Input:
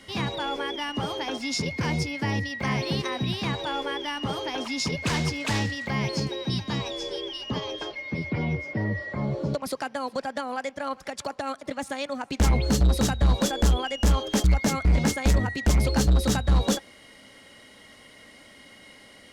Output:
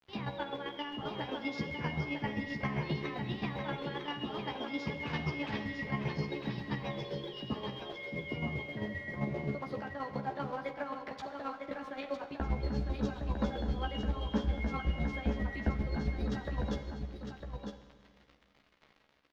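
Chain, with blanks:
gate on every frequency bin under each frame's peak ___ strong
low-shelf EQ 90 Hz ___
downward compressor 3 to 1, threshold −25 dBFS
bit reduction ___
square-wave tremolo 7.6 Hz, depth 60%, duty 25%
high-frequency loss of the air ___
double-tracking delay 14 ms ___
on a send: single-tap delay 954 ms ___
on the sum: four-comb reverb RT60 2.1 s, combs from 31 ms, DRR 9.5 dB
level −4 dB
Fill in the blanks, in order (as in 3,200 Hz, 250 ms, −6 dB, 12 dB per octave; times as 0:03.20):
−30 dB, −6 dB, 7 bits, 270 metres, −5 dB, −6.5 dB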